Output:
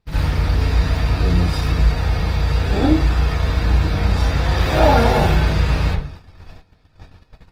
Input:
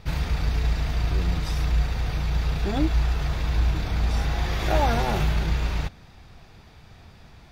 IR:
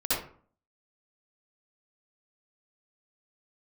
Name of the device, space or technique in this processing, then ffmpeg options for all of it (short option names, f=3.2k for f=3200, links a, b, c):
speakerphone in a meeting room: -filter_complex "[1:a]atrim=start_sample=2205[a];[0:a][a]afir=irnorm=-1:irlink=0,dynaudnorm=f=520:g=7:m=8dB,agate=range=-18dB:threshold=-33dB:ratio=16:detection=peak,volume=-1dB" -ar 48000 -c:a libopus -b:a 20k